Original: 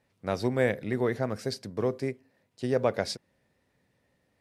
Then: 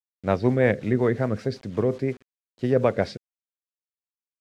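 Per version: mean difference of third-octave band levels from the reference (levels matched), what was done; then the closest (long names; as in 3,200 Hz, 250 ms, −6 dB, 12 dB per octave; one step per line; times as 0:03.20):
3.5 dB: bass and treble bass +2 dB, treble −10 dB
bit reduction 9 bits
rotating-speaker cabinet horn 5.5 Hz
high-frequency loss of the air 66 metres
level +7.5 dB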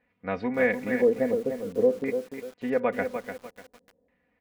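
7.5 dB: high-shelf EQ 2,300 Hz −3 dB
comb filter 4.1 ms, depth 78%
auto-filter low-pass square 0.49 Hz 520–2,200 Hz
feedback echo at a low word length 297 ms, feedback 35%, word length 7 bits, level −7.5 dB
level −2.5 dB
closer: first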